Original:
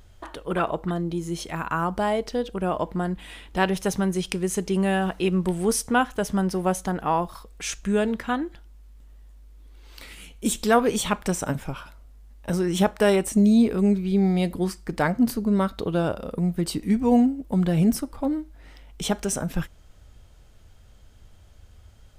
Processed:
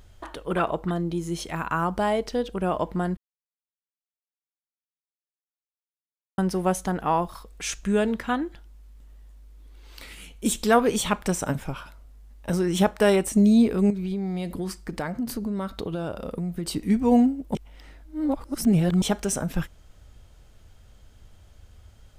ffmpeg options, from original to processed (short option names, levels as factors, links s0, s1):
-filter_complex "[0:a]asettb=1/sr,asplit=3[s0][s1][s2];[s0]atrim=end=13.904[s3];[s1]atrim=start=13.9:end=16.76,asetpts=PTS-STARTPTS,afade=t=in:d=0.004:c=qsin,afade=t=out:st=2.856:d=0.004:c=qsin,acompressor=threshold=0.0562:ratio=6:attack=3.2:release=140:knee=1:detection=peak[s4];[s2]atrim=start=16.756[s5];[s3][s4]acrossfade=d=0.004:c1=hsin:c2=qsin[s6];[s6][s5]acrossfade=d=0.004:c1=qsin:c2=hsin,asplit=5[s7][s8][s9][s10][s11];[s7]atrim=end=3.17,asetpts=PTS-STARTPTS,afade=t=out:st=3.166:d=0.004:c=hsin[s12];[s8]atrim=start=3.17:end=6.38,asetpts=PTS-STARTPTS,volume=0[s13];[s9]atrim=start=6.38:end=17.552,asetpts=PTS-STARTPTS,afade=t=in:d=0.004:c=hsin[s14];[s10]atrim=start=17.548:end=19.022,asetpts=PTS-STARTPTS,areverse[s15];[s11]atrim=start=19.018[s16];[s12][s13][s14]concat=n=3:v=0:a=1[s17];[s17][s15]acrossfade=d=0.004:c1=hsin:c2=hsin[s18];[s18][s16]acrossfade=d=0.004:c1=hsin:c2=hsin"